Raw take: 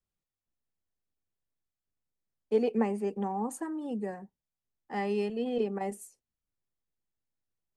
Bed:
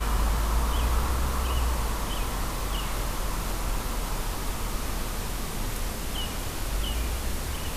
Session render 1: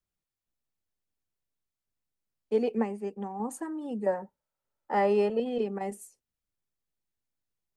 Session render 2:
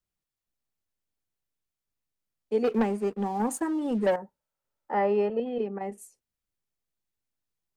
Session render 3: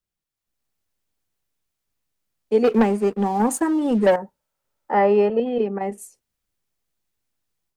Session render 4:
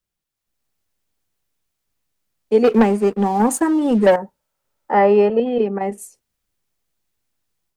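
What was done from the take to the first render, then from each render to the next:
2.75–3.40 s: upward expansion, over -38 dBFS; 4.06–5.40 s: small resonant body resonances 580/900/1300 Hz, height 15 dB, ringing for 20 ms
2.64–4.16 s: waveshaping leveller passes 2; 4.91–5.98 s: tone controls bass -1 dB, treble -15 dB
level rider gain up to 8 dB
trim +3.5 dB

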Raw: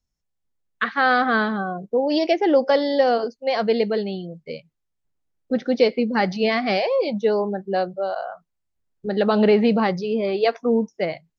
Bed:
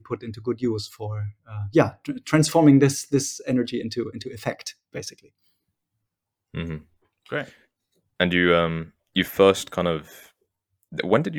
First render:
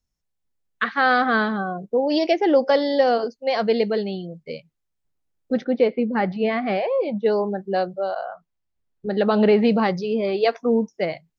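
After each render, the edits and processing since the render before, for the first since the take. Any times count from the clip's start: 5.64–7.26 s: distance through air 400 m; 8.11–9.63 s: distance through air 77 m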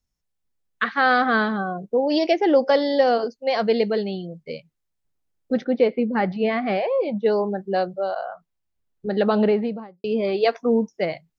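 9.20–10.04 s: studio fade out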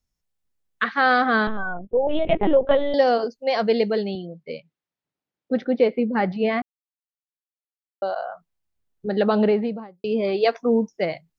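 1.47–2.94 s: LPC vocoder at 8 kHz pitch kept; 4.15–5.64 s: band-pass 160–4300 Hz; 6.62–8.02 s: mute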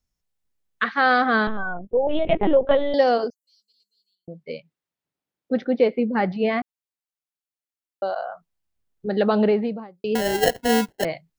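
3.30–4.28 s: inverse Chebyshev high-pass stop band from 2 kHz, stop band 70 dB; 10.15–11.05 s: sample-rate reducer 1.2 kHz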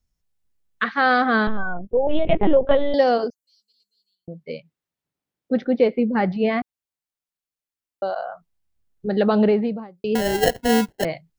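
bass shelf 180 Hz +6.5 dB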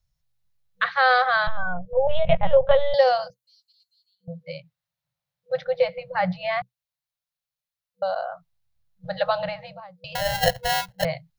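FFT band-reject 190–490 Hz; graphic EQ with 31 bands 125 Hz +9 dB, 4 kHz +5 dB, 8 kHz -5 dB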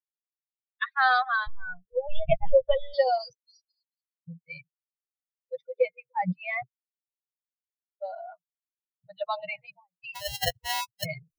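expander on every frequency bin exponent 3; reverse; upward compressor, threshold -25 dBFS; reverse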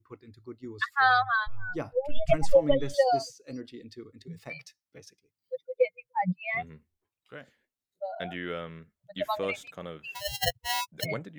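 add bed -17 dB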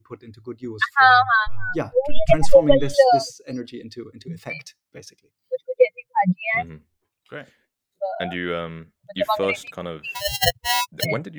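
trim +9 dB; peak limiter -2 dBFS, peak gain reduction 1.5 dB

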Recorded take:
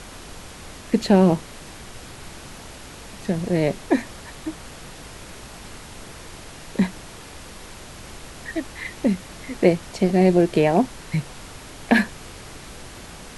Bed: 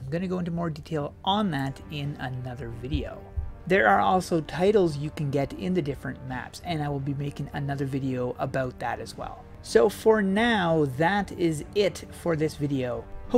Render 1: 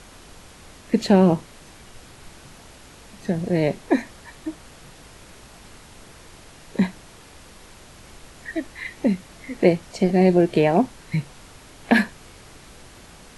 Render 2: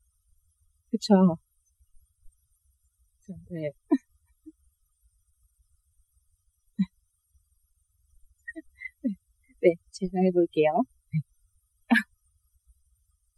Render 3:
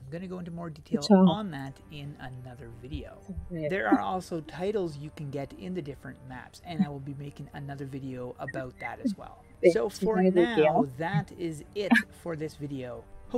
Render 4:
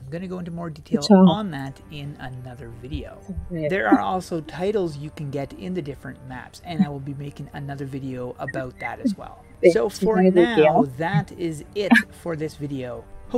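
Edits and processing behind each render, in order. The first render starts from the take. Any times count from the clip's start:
noise print and reduce 6 dB
expander on every frequency bin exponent 3
add bed -9 dB
trim +7 dB; peak limiter -2 dBFS, peak gain reduction 1.5 dB

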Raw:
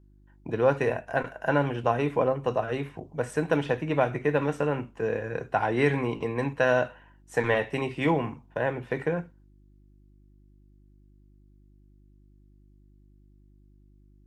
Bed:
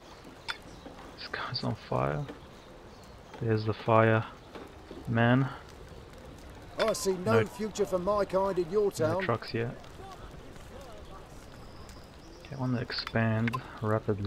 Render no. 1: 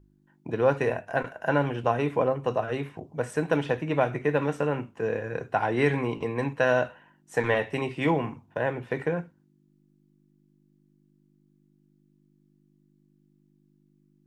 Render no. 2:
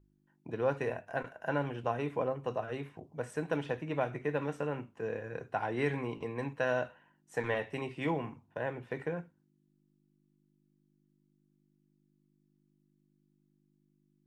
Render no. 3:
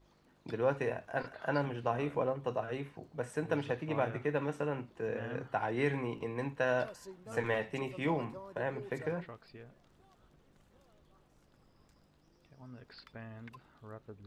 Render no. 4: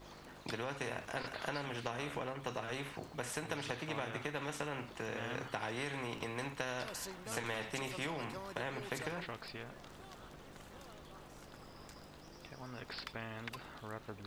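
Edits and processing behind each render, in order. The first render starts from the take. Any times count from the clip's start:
de-hum 50 Hz, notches 2
trim -8.5 dB
add bed -20 dB
compression, threshold -34 dBFS, peak gain reduction 9 dB; spectrum-flattening compressor 2:1

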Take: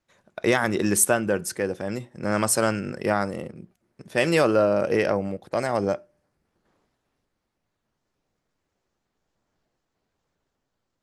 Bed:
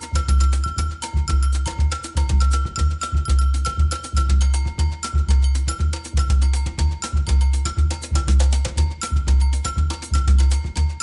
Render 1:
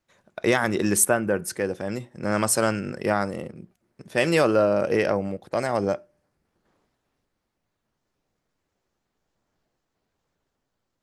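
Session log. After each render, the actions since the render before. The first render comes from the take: 1.05–1.48 s: high-order bell 4.7 kHz -8 dB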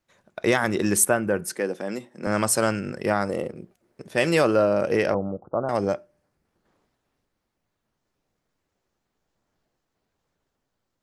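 1.51–2.27 s: high-pass 180 Hz 24 dB/octave; 3.29–4.09 s: FFT filter 200 Hz 0 dB, 460 Hz +8 dB, 990 Hz +3 dB; 5.14–5.69 s: steep low-pass 1.4 kHz 96 dB/octave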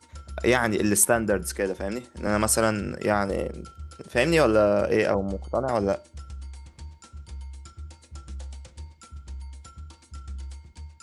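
add bed -22 dB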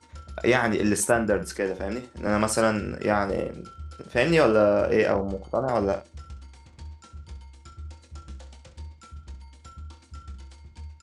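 distance through air 59 m; early reflections 23 ms -9.5 dB, 66 ms -12.5 dB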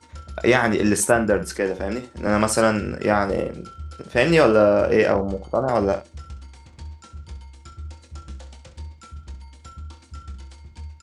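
trim +4 dB

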